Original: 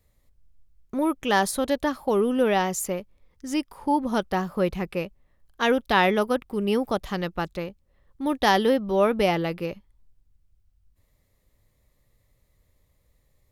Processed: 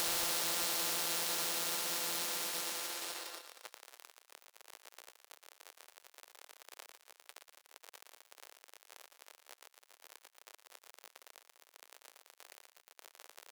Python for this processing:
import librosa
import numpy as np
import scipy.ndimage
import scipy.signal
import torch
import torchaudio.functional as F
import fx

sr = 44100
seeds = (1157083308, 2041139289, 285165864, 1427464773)

p1 = np.r_[np.sort(x[:len(x) // 32 * 32].reshape(-1, 32), axis=1).ravel(), x[len(x) // 32 * 32:]]
p2 = fx.high_shelf_res(p1, sr, hz=3000.0, db=10.5, q=3.0)
p3 = fx.level_steps(p2, sr, step_db=13)
p4 = p2 + (p3 * 10.0 ** (-2.0 / 20.0))
p5 = fx.paulstretch(p4, sr, seeds[0], factor=7.0, window_s=1.0, from_s=9.58)
p6 = fx.dmg_crackle(p5, sr, seeds[1], per_s=92.0, level_db=-36.0)
p7 = np.sign(p6) * np.maximum(np.abs(p6) - 10.0 ** (-38.5 / 20.0), 0.0)
p8 = fx.tilt_eq(p7, sr, slope=-2.5)
p9 = fx.tube_stage(p8, sr, drive_db=20.0, bias=0.6)
p10 = scipy.signal.sosfilt(scipy.signal.butter(4, 470.0, 'highpass', fs=sr, output='sos'), p9)
p11 = p10 + fx.echo_thinned(p10, sr, ms=116, feedback_pct=42, hz=850.0, wet_db=-9.5, dry=0)
p12 = np.clip(10.0 ** (20.5 / 20.0) * p11, -1.0, 1.0) / 10.0 ** (20.5 / 20.0)
y = fx.spectral_comp(p12, sr, ratio=4.0)